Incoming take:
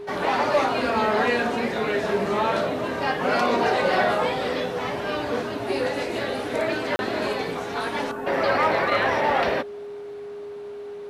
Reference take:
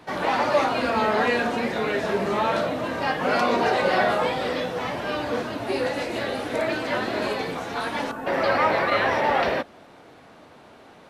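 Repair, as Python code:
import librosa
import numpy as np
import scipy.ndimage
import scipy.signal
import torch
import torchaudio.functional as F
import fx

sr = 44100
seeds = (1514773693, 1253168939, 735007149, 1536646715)

y = fx.fix_declip(x, sr, threshold_db=-12.5)
y = fx.notch(y, sr, hz=410.0, q=30.0)
y = fx.fix_interpolate(y, sr, at_s=(6.96,), length_ms=31.0)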